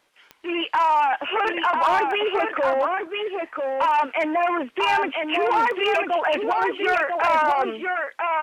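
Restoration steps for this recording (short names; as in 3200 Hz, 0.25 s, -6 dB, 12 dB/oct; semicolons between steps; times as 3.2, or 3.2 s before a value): clip repair -14 dBFS; de-click; expander -29 dBFS, range -21 dB; inverse comb 0.995 s -4 dB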